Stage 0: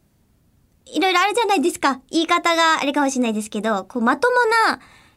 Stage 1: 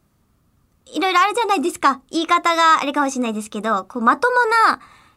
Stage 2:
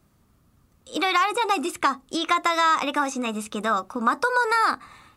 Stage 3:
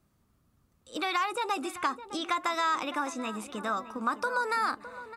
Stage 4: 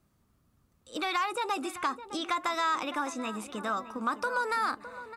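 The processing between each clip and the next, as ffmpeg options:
ffmpeg -i in.wav -af "equalizer=frequency=1200:width=3.8:gain=11,volume=-2dB" out.wav
ffmpeg -i in.wav -filter_complex "[0:a]acrossover=split=930|4000[link_01][link_02][link_03];[link_01]acompressor=threshold=-27dB:ratio=4[link_04];[link_02]acompressor=threshold=-21dB:ratio=4[link_05];[link_03]acompressor=threshold=-36dB:ratio=4[link_06];[link_04][link_05][link_06]amix=inputs=3:normalize=0" out.wav
ffmpeg -i in.wav -filter_complex "[0:a]asplit=2[link_01][link_02];[link_02]adelay=611,lowpass=frequency=2000:poles=1,volume=-13dB,asplit=2[link_03][link_04];[link_04]adelay=611,lowpass=frequency=2000:poles=1,volume=0.48,asplit=2[link_05][link_06];[link_06]adelay=611,lowpass=frequency=2000:poles=1,volume=0.48,asplit=2[link_07][link_08];[link_08]adelay=611,lowpass=frequency=2000:poles=1,volume=0.48,asplit=2[link_09][link_10];[link_10]adelay=611,lowpass=frequency=2000:poles=1,volume=0.48[link_11];[link_01][link_03][link_05][link_07][link_09][link_11]amix=inputs=6:normalize=0,volume=-8dB" out.wav
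ffmpeg -i in.wav -af "asoftclip=type=tanh:threshold=-17.5dB" out.wav

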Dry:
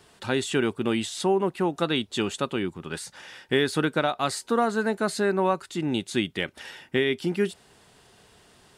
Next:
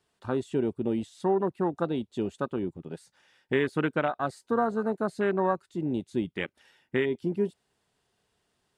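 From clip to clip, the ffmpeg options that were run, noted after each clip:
ffmpeg -i in.wav -af "afwtdn=0.0398,volume=-2.5dB" out.wav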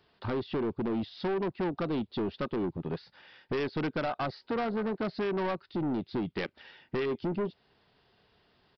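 ffmpeg -i in.wav -af "acompressor=threshold=-31dB:ratio=3,aresample=11025,asoftclip=type=tanh:threshold=-35.5dB,aresample=44100,volume=8.5dB" out.wav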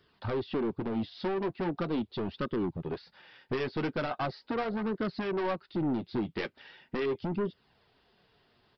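ffmpeg -i in.wav -af "flanger=delay=0.6:depth=8.2:regen=-34:speed=0.4:shape=sinusoidal,volume=3.5dB" out.wav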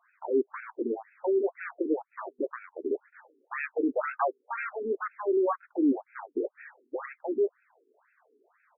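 ffmpeg -i in.wav -af "afftfilt=real='re*between(b*sr/1024,310*pow(1900/310,0.5+0.5*sin(2*PI*2*pts/sr))/1.41,310*pow(1900/310,0.5+0.5*sin(2*PI*2*pts/sr))*1.41)':imag='im*between(b*sr/1024,310*pow(1900/310,0.5+0.5*sin(2*PI*2*pts/sr))/1.41,310*pow(1900/310,0.5+0.5*sin(2*PI*2*pts/sr))*1.41)':win_size=1024:overlap=0.75,volume=8dB" out.wav

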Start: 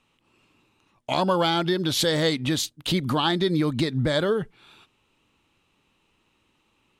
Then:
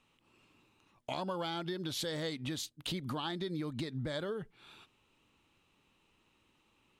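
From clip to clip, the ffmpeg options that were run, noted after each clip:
ffmpeg -i in.wav -af "acompressor=threshold=-36dB:ratio=2.5,volume=-4dB" out.wav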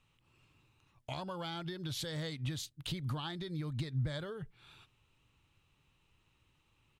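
ffmpeg -i in.wav -af "firequalizer=gain_entry='entry(140,0);entry(200,-13);entry(1500,-9)':delay=0.05:min_phase=1,volume=6.5dB" out.wav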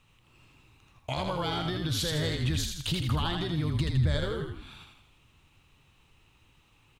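ffmpeg -i in.wav -filter_complex "[0:a]asplit=8[link_01][link_02][link_03][link_04][link_05][link_06][link_07][link_08];[link_02]adelay=81,afreqshift=-48,volume=-4dB[link_09];[link_03]adelay=162,afreqshift=-96,volume=-9.8dB[link_10];[link_04]adelay=243,afreqshift=-144,volume=-15.7dB[link_11];[link_05]adelay=324,afreqshift=-192,volume=-21.5dB[link_12];[link_06]adelay=405,afreqshift=-240,volume=-27.4dB[link_13];[link_07]adelay=486,afreqshift=-288,volume=-33.2dB[link_14];[link_08]adelay=567,afreqshift=-336,volume=-39.1dB[link_15];[link_01][link_09][link_10][link_11][link_12][link_13][link_14][link_15]amix=inputs=8:normalize=0,volume=8dB" out.wav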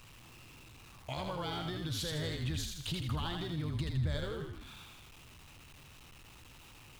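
ffmpeg -i in.wav -af "aeval=exprs='val(0)+0.5*0.0075*sgn(val(0))':channel_layout=same,volume=-8dB" out.wav

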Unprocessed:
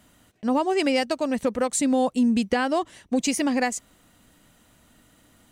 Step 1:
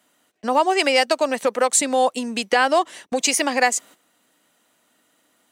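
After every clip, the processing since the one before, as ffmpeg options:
ffmpeg -i in.wav -filter_complex "[0:a]highpass=350,agate=range=-12dB:threshold=-50dB:ratio=16:detection=peak,acrossover=split=480|810[link_01][link_02][link_03];[link_01]acompressor=threshold=-37dB:ratio=6[link_04];[link_04][link_02][link_03]amix=inputs=3:normalize=0,volume=8.5dB" out.wav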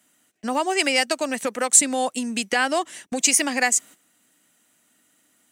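ffmpeg -i in.wav -af "equalizer=frequency=500:width_type=o:width=1:gain=-7,equalizer=frequency=1000:width_type=o:width=1:gain=-7,equalizer=frequency=4000:width_type=o:width=1:gain=-5,equalizer=frequency=8000:width_type=o:width=1:gain=4,volume=1.5dB" out.wav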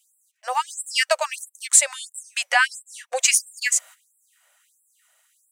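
ffmpeg -i in.wav -filter_complex "[0:a]acrossover=split=130|2600[link_01][link_02][link_03];[link_02]dynaudnorm=framelen=110:gausssize=11:maxgain=6dB[link_04];[link_01][link_04][link_03]amix=inputs=3:normalize=0,afftfilt=real='re*gte(b*sr/1024,480*pow(7500/480,0.5+0.5*sin(2*PI*1.5*pts/sr)))':imag='im*gte(b*sr/1024,480*pow(7500/480,0.5+0.5*sin(2*PI*1.5*pts/sr)))':win_size=1024:overlap=0.75" out.wav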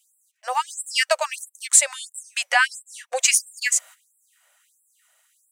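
ffmpeg -i in.wav -af anull out.wav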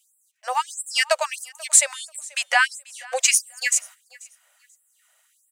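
ffmpeg -i in.wav -af "aecho=1:1:487|974:0.0668|0.0147" out.wav

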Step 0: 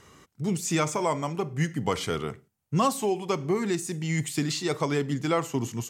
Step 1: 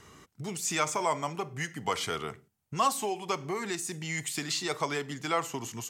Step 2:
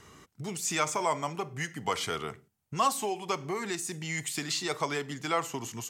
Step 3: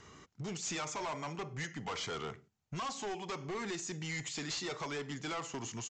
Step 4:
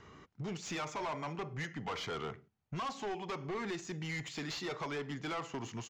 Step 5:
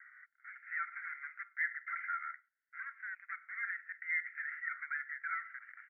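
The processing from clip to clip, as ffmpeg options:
ffmpeg -i in.wav -filter_complex "[0:a]bandreject=frequency=530:width=12,acrossover=split=530[link_01][link_02];[link_01]acompressor=threshold=-39dB:ratio=5[link_03];[link_03][link_02]amix=inputs=2:normalize=0" out.wav
ffmpeg -i in.wav -af anull out.wav
ffmpeg -i in.wav -af "alimiter=limit=-19dB:level=0:latency=1:release=338,aresample=16000,asoftclip=type=hard:threshold=-33.5dB,aresample=44100,volume=-2dB" out.wav
ffmpeg -i in.wav -af "adynamicsmooth=sensitivity=4.5:basefreq=3900,volume=1dB" out.wav
ffmpeg -i in.wav -af "asuperpass=centerf=1700:order=12:qfactor=2.2,volume=9dB" out.wav

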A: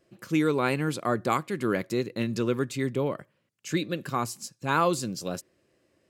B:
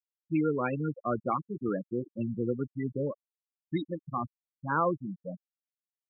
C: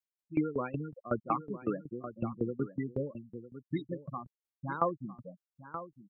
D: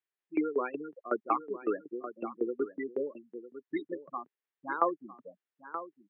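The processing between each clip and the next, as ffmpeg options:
ffmpeg -i in.wav -af "bandreject=frequency=390:width=12,afftfilt=real='re*gte(hypot(re,im),0.126)':imag='im*gte(hypot(re,im),0.126)':win_size=1024:overlap=0.75,volume=-3dB" out.wav
ffmpeg -i in.wav -af "aecho=1:1:955:0.282,aeval=exprs='val(0)*pow(10,-19*if(lt(mod(5.4*n/s,1),2*abs(5.4)/1000),1-mod(5.4*n/s,1)/(2*abs(5.4)/1000),(mod(5.4*n/s,1)-2*abs(5.4)/1000)/(1-2*abs(5.4)/1000))/20)':channel_layout=same,volume=2dB" out.wav
ffmpeg -i in.wav -af "highpass=frequency=310:width=0.5412,highpass=frequency=310:width=1.3066,equalizer=frequency=400:width_type=q:width=4:gain=5,equalizer=frequency=570:width_type=q:width=4:gain=-4,equalizer=frequency=1800:width_type=q:width=4:gain=6,lowpass=frequency=3300:width=0.5412,lowpass=frequency=3300:width=1.3066,volume=2.5dB" out.wav

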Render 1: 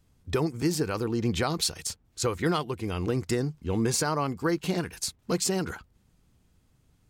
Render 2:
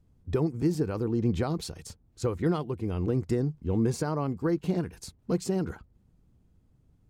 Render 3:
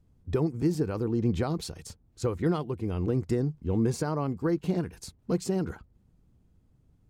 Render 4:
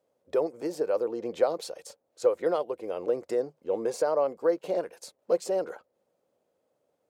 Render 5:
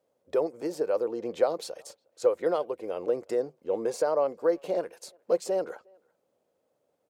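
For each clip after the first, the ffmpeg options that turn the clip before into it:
ffmpeg -i in.wav -af "tiltshelf=frequency=940:gain=7.5,volume=-5.5dB" out.wav
ffmpeg -i in.wav -af anull out.wav
ffmpeg -i in.wav -af "highpass=frequency=550:width_type=q:width=6.2,volume=-1.5dB" out.wav
ffmpeg -i in.wav -filter_complex "[0:a]asplit=2[link_01][link_02];[link_02]adelay=360,highpass=300,lowpass=3400,asoftclip=type=hard:threshold=-20dB,volume=-30dB[link_03];[link_01][link_03]amix=inputs=2:normalize=0" out.wav

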